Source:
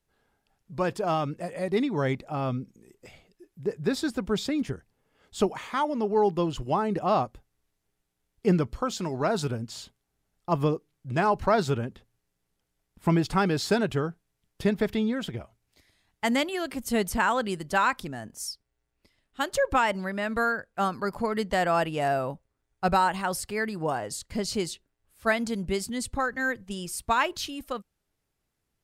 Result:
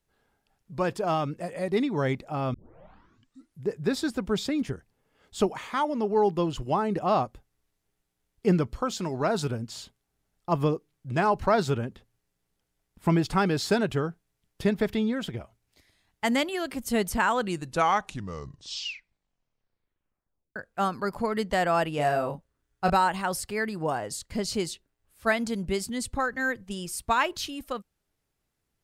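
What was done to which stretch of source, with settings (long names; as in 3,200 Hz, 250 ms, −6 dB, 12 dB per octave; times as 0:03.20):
0:02.54: tape start 1.13 s
0:17.29: tape stop 3.27 s
0:21.95–0:22.90: double-tracking delay 34 ms −5.5 dB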